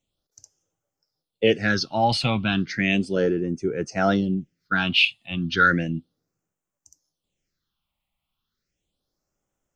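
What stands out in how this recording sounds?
phasing stages 6, 0.34 Hz, lowest notch 410–4100 Hz

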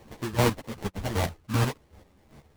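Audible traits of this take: chopped level 2.6 Hz, depth 65%, duty 25%; aliases and images of a low sample rate 1.4 kHz, jitter 20%; a shimmering, thickened sound

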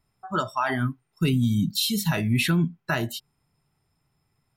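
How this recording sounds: noise floor -74 dBFS; spectral tilt -5.0 dB/octave

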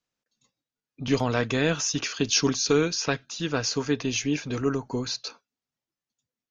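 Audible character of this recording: noise floor -93 dBFS; spectral tilt -3.5 dB/octave

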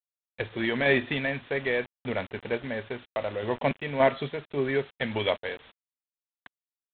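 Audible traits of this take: random-step tremolo; a quantiser's noise floor 8-bit, dither none; G.726

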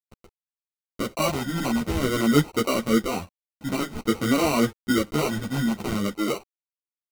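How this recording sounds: a quantiser's noise floor 8-bit, dither none; phasing stages 6, 0.5 Hz, lowest notch 420–1500 Hz; aliases and images of a low sample rate 1.7 kHz, jitter 0%; a shimmering, thickened sound

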